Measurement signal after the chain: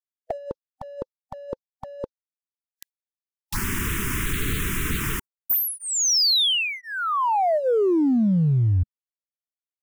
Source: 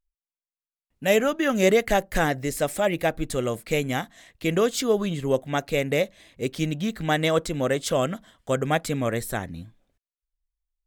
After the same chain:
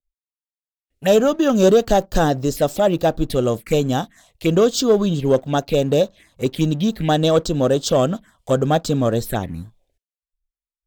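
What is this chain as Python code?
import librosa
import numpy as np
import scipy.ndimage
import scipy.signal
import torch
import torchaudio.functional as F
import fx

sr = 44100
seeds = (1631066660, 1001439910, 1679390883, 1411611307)

y = fx.env_phaser(x, sr, low_hz=170.0, high_hz=2100.0, full_db=-23.5)
y = fx.noise_reduce_blind(y, sr, reduce_db=25)
y = fx.leveller(y, sr, passes=1)
y = y * librosa.db_to_amplitude(4.5)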